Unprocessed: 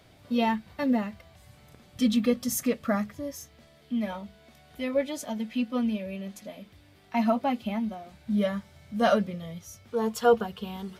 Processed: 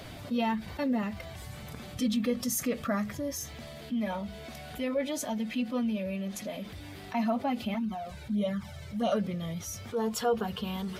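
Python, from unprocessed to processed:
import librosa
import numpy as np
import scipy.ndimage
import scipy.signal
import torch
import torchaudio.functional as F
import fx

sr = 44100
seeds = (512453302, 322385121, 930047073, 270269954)

y = fx.spec_quant(x, sr, step_db=15)
y = fx.env_flanger(y, sr, rest_ms=2.6, full_db=-21.5, at=(7.74, 9.12))
y = fx.env_flatten(y, sr, amount_pct=50)
y = y * 10.0 ** (-7.5 / 20.0)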